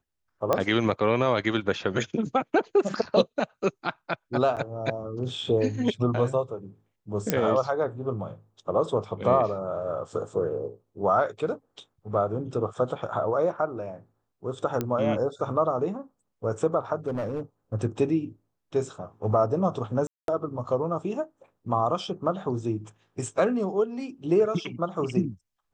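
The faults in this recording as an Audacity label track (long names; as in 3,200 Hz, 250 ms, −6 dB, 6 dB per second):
0.530000	0.530000	click −10 dBFS
4.560000	4.570000	drop-out 8 ms
7.300000	7.300000	click −7 dBFS
14.810000	14.810000	click −14 dBFS
17.070000	17.410000	clipping −25.5 dBFS
20.070000	20.280000	drop-out 212 ms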